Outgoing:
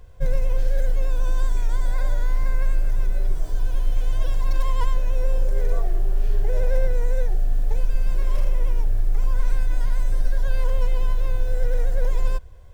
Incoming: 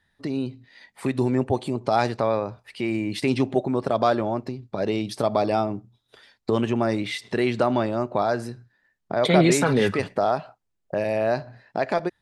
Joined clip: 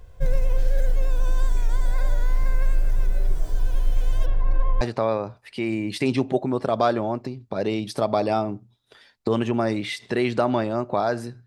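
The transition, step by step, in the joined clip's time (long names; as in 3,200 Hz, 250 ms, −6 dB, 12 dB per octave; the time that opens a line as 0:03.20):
outgoing
0:04.25–0:04.81: low-pass filter 2,300 Hz → 1,200 Hz
0:04.81: continue with incoming from 0:02.03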